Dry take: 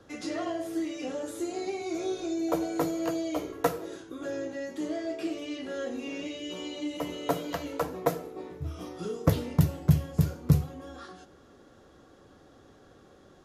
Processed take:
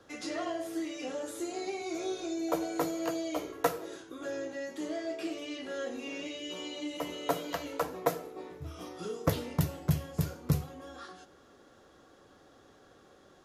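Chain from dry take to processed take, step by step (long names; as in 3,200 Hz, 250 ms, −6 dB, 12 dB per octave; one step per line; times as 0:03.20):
low-shelf EQ 340 Hz −8 dB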